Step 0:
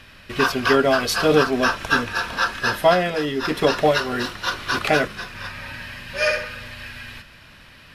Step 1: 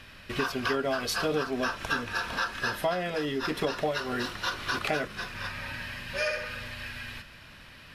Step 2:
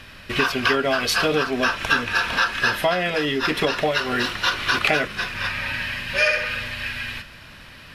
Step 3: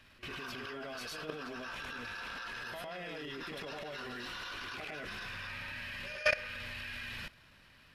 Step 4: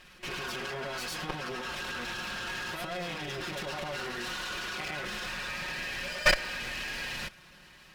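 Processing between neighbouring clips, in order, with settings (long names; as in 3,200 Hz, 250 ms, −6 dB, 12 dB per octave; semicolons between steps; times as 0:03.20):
downward compressor 3 to 1, threshold −25 dBFS, peak gain reduction 11 dB; level −3 dB
dynamic equaliser 2,500 Hz, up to +7 dB, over −45 dBFS, Q 1; level +6.5 dB
backwards echo 105 ms −6 dB; transient designer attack −11 dB, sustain +7 dB; output level in coarse steps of 18 dB; level −7 dB
lower of the sound and its delayed copy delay 5.5 ms; level +8 dB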